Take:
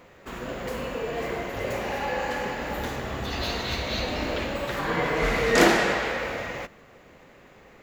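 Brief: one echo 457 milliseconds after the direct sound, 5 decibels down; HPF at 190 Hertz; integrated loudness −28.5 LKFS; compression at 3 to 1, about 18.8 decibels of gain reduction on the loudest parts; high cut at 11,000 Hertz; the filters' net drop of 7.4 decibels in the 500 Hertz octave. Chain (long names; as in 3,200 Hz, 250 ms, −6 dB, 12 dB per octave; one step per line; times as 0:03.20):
high-pass filter 190 Hz
low-pass filter 11,000 Hz
parametric band 500 Hz −9 dB
downward compressor 3 to 1, threshold −43 dBFS
single-tap delay 457 ms −5 dB
level +12 dB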